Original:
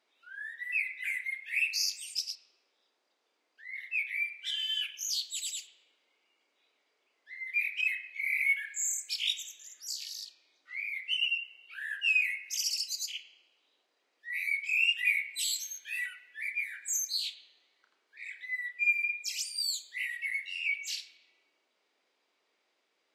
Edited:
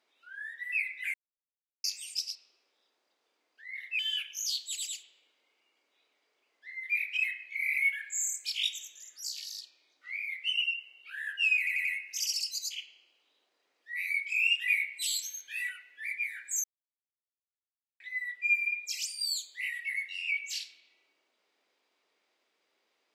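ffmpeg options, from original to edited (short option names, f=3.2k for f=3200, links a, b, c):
-filter_complex "[0:a]asplit=9[a][b][c][d][e][f][g][h][i];[a]atrim=end=1.14,asetpts=PTS-STARTPTS,afade=t=out:st=1.136:d=0.004:c=hsin[j];[b]atrim=start=1.14:end=1.84,asetpts=PTS-STARTPTS,volume=0[k];[c]atrim=start=1.84:end=3.992,asetpts=PTS-STARTPTS,afade=t=in:d=0.004:c=hsin[l];[d]atrim=start=4.628:end=12.312[m];[e]atrim=start=12.218:end=12.312[n];[f]atrim=start=12.218:end=12.312[o];[g]atrim=start=12.218:end=17.01,asetpts=PTS-STARTPTS,afade=t=out:st=4.788:d=0.004:c=hsin[p];[h]atrim=start=17.01:end=18.37,asetpts=PTS-STARTPTS,volume=0[q];[i]atrim=start=18.37,asetpts=PTS-STARTPTS,afade=t=in:d=0.004:c=hsin[r];[j][k][l]concat=n=3:v=0:a=1[s];[s][m]acrossfade=d=0.004:c1=hsin:c2=hsin[t];[t][n]acrossfade=d=0.004:c1=hsin:c2=hsin[u];[u][o]acrossfade=d=0.004:c1=hsin:c2=hsin[v];[p][q][r]concat=n=3:v=0:a=1[w];[v][w]acrossfade=d=0.004:c1=hsin:c2=hsin"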